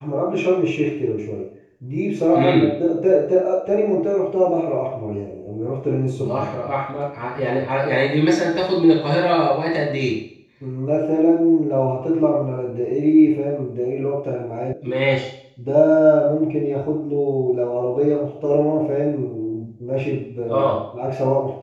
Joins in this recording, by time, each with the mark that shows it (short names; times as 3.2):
14.73 sound cut off